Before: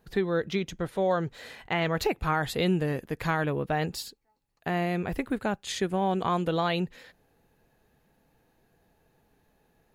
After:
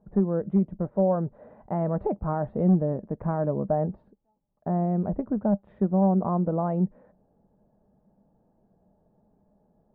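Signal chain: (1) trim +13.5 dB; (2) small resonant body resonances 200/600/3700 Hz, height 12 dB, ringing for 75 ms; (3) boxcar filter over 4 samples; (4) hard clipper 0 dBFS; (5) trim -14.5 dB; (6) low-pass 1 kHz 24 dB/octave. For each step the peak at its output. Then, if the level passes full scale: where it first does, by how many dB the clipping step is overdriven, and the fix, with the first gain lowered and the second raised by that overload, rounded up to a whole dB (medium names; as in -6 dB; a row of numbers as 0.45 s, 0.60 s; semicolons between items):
-1.5 dBFS, +3.5 dBFS, +3.5 dBFS, 0.0 dBFS, -14.5 dBFS, -13.5 dBFS; step 2, 3.5 dB; step 1 +9.5 dB, step 5 -10.5 dB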